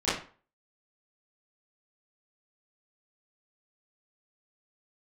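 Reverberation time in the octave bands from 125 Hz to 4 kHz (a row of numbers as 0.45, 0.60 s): 0.35, 0.35, 0.40, 0.40, 0.35, 0.30 s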